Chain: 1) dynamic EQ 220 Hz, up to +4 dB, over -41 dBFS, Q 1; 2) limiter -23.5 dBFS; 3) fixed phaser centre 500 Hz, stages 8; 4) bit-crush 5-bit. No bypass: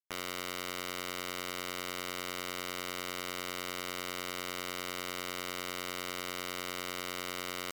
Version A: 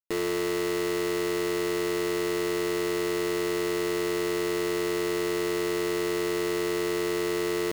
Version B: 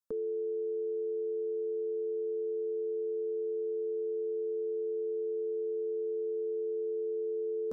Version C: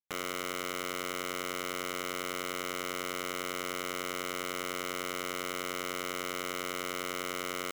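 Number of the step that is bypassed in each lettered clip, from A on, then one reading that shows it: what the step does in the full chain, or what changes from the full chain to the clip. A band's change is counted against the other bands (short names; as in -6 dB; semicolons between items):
3, 500 Hz band +12.5 dB; 4, crest factor change -11.0 dB; 1, 4 kHz band -3.0 dB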